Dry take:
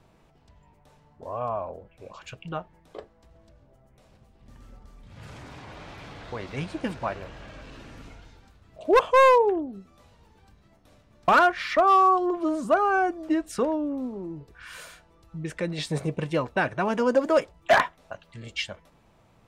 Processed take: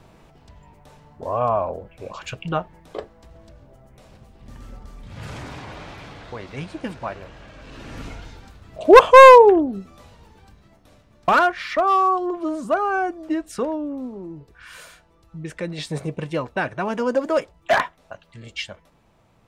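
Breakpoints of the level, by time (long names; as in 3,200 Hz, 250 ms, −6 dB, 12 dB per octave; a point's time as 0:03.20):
0:05.39 +9 dB
0:06.43 0 dB
0:07.56 0 dB
0:08.00 +10.5 dB
0:09.76 +10.5 dB
0:11.63 +0.5 dB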